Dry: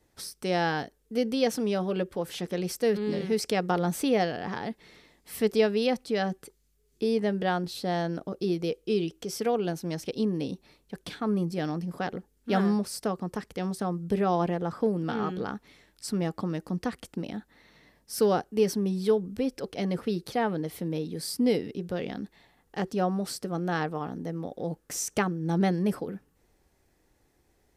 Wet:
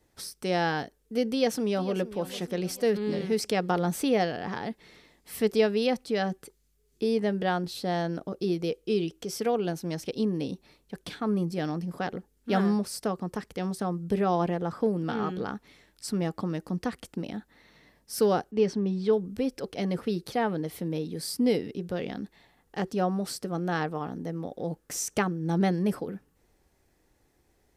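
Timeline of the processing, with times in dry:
1.31–1.96 s: echo throw 450 ms, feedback 50%, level -15 dB
18.51–19.13 s: distance through air 120 m

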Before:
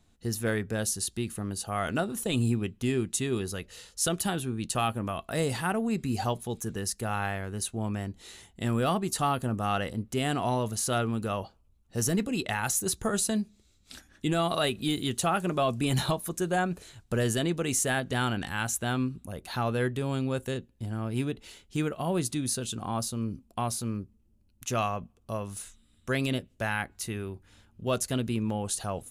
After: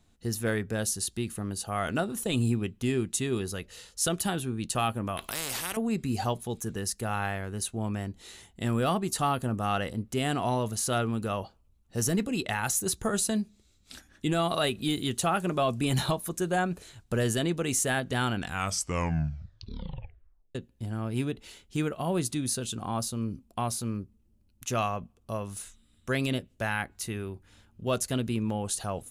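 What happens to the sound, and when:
5.17–5.77 s: spectrum-flattening compressor 4:1
18.34 s: tape stop 2.21 s

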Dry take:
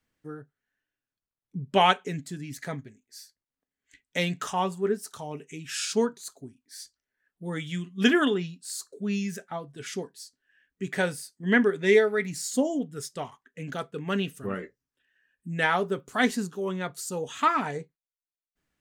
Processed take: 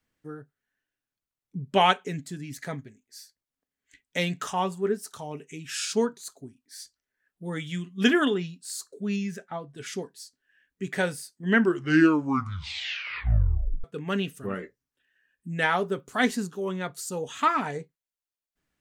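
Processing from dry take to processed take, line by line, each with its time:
9.16–9.75 s: low-pass 3.9 kHz 6 dB/octave
11.45 s: tape stop 2.39 s

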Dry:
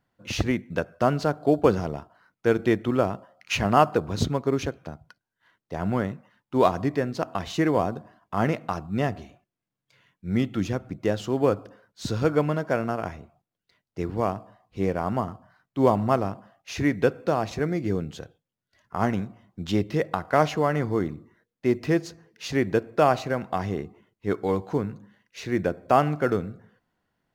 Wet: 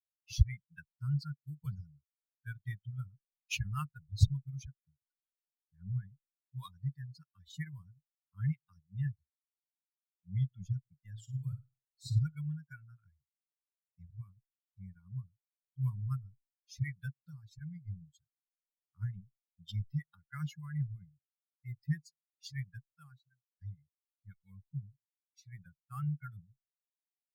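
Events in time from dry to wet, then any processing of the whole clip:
11.12–12.19 s: flutter echo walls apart 9.3 m, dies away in 0.8 s
22.67–23.61 s: fade out
whole clip: expander on every frequency bin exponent 3; elliptic band-stop 140–1200 Hz, stop band 40 dB; amplifier tone stack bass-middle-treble 10-0-1; trim +17.5 dB

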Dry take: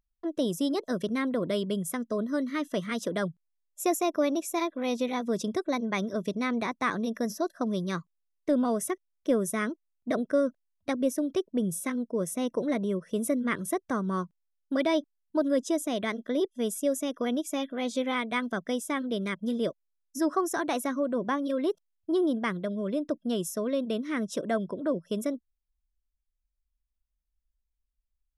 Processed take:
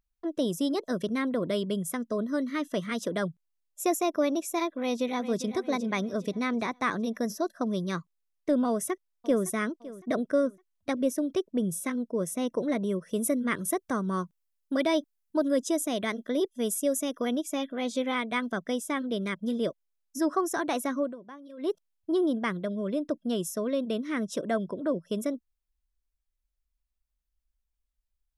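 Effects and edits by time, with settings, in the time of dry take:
4.79–5.52 s: echo throw 400 ms, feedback 45%, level -12 dB
8.68–9.45 s: echo throw 560 ms, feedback 35%, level -17 dB
12.84–17.36 s: treble shelf 6.8 kHz +7 dB
21.03–21.70 s: dip -17 dB, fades 0.13 s

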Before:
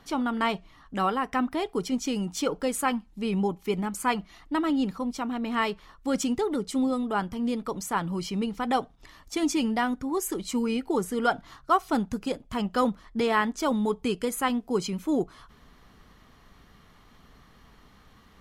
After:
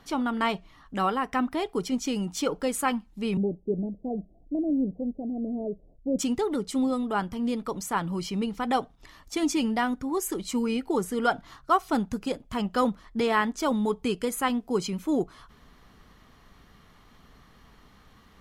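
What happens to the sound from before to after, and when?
3.37–6.19 s: steep low-pass 680 Hz 72 dB/octave

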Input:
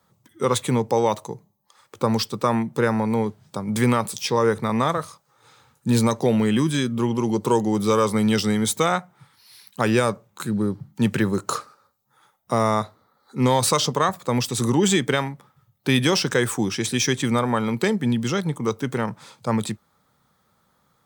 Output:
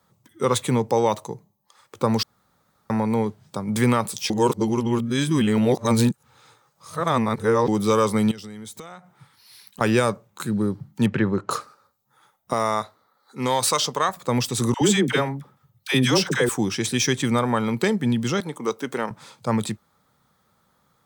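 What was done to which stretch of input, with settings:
2.23–2.90 s: room tone
4.30–7.68 s: reverse
8.31–9.81 s: compression 10:1, threshold -35 dBFS
11.06–11.51 s: low-pass 2.6 kHz
12.53–14.17 s: bass shelf 330 Hz -11 dB
14.74–16.49 s: phase dispersion lows, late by 72 ms, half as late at 710 Hz
18.40–19.11 s: high-pass 280 Hz

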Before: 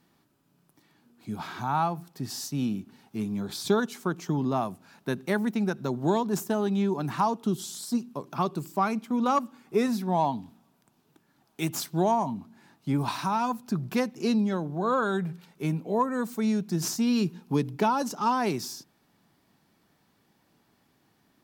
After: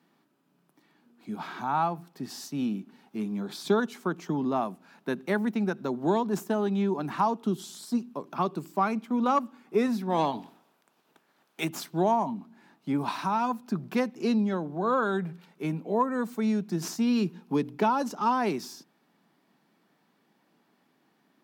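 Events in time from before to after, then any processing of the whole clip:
10.09–11.63 s: spectral peaks clipped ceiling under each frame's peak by 15 dB
whole clip: high-pass 170 Hz 24 dB/octave; tone controls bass 0 dB, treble -7 dB

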